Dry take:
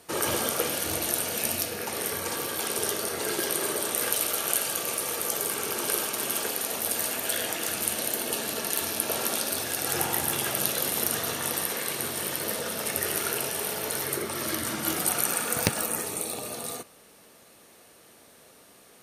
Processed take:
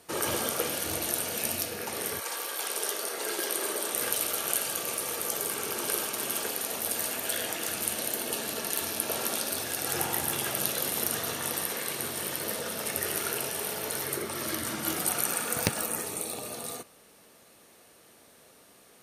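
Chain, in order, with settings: 2.19–3.93 HPF 640 Hz -> 240 Hz 12 dB/oct; gain -2.5 dB

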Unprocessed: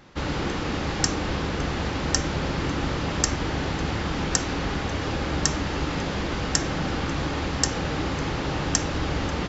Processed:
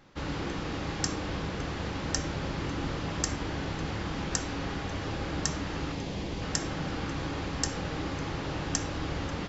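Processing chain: 5.92–6.42 bell 1400 Hz -9 dB 0.9 oct; on a send: reverb RT60 0.55 s, pre-delay 6 ms, DRR 10.5 dB; on the sum: gain -7.5 dB

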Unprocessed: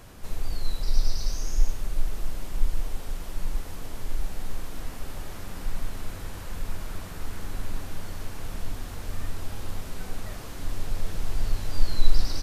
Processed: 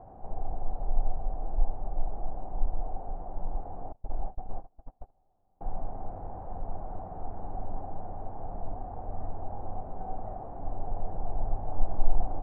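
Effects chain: 3.92–5.61 gate -24 dBFS, range -34 dB; ladder low-pass 800 Hz, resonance 80%; Doppler distortion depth 0.56 ms; gain +8 dB

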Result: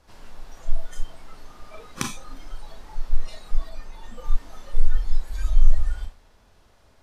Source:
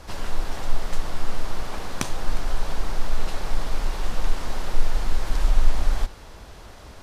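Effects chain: Schroeder reverb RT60 0.45 s, combs from 26 ms, DRR 3.5 dB; spectral noise reduction 16 dB; 3.69–4.25 mismatched tape noise reduction decoder only

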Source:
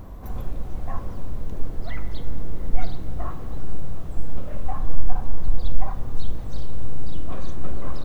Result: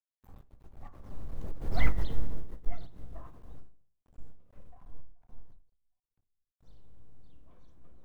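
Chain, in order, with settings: Doppler pass-by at 1.88, 19 m/s, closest 2.3 m; crossover distortion -53.5 dBFS; ending taper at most 120 dB/s; gain +5 dB

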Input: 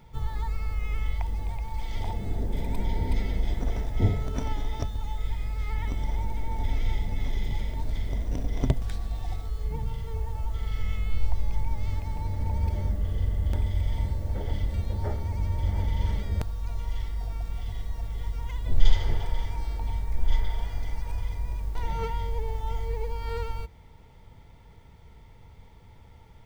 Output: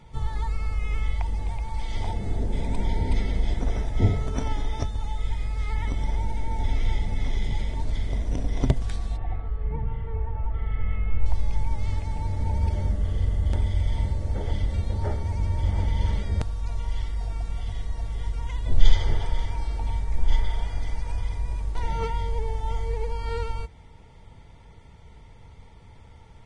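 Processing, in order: 9.16–11.26 LPF 2300 Hz 24 dB/oct; gain +2.5 dB; Vorbis 32 kbps 22050 Hz

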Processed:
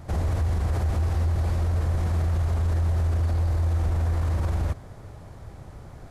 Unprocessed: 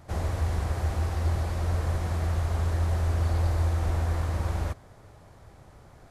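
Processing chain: low shelf 340 Hz +6.5 dB; limiter -22 dBFS, peak gain reduction 11 dB; gain +4 dB

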